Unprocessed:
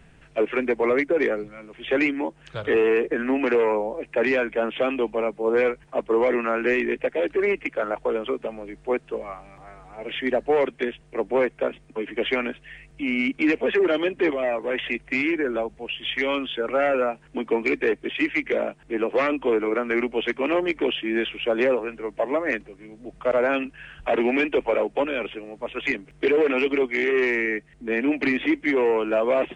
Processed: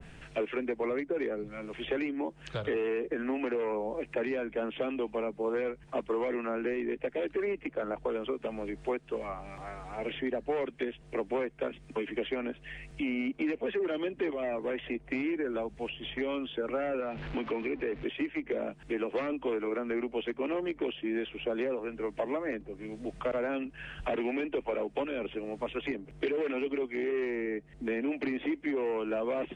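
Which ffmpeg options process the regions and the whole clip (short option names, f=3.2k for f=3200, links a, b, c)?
-filter_complex "[0:a]asettb=1/sr,asplit=3[a][b][c];[a]atrim=end=17.004[d];[b]atrim=start=17:end=18.04,asetpts=PTS-STARTPTS,afade=t=in:d=0.004:c=qsin,afade=t=out:st=1.036:d=0.004:c=qsin,aeval=exprs='val(0)+0.5*0.0178*sgn(val(0))':c=same,acompressor=threshold=-30dB:ratio=1.5:attack=3.2:release=140:knee=1:detection=peak,lowpass=f=2.6k:t=q:w=1.7[e];[c]atrim=start=18.036[f];[d][e]acrossfade=d=0.004:c1=hsin:c2=qsin[g];[g][f]acrossfade=d=0.004:c1=qsin:c2=hsin,equalizer=f=3.9k:w=0.86:g=3.5,acrossover=split=380|970[h][i][j];[h]acompressor=threshold=-39dB:ratio=4[k];[i]acompressor=threshold=-41dB:ratio=4[l];[j]acompressor=threshold=-45dB:ratio=4[m];[k][l][m]amix=inputs=3:normalize=0,adynamicequalizer=threshold=0.00447:dfrequency=1500:dqfactor=0.7:tfrequency=1500:tqfactor=0.7:attack=5:release=100:ratio=0.375:range=2:mode=cutabove:tftype=highshelf,volume=2.5dB"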